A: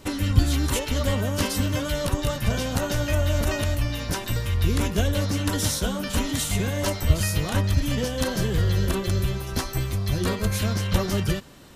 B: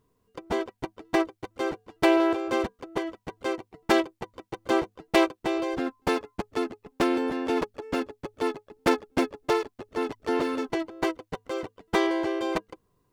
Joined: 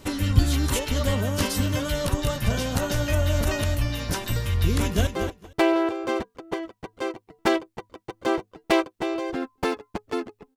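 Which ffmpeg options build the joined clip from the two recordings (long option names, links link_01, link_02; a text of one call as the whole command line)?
ffmpeg -i cue0.wav -i cue1.wav -filter_complex "[0:a]apad=whole_dur=10.56,atrim=end=10.56,atrim=end=5.072[link_01];[1:a]atrim=start=1.508:end=7[link_02];[link_01][link_02]acrossfade=duration=0.004:curve1=hsin:curve2=hsin,asplit=2[link_03][link_04];[link_04]afade=type=in:start_time=4.72:duration=0.01,afade=type=out:start_time=5.07:duration=0.01,aecho=0:1:230|460:0.334965|0.0502448[link_05];[link_03][link_05]amix=inputs=2:normalize=0" out.wav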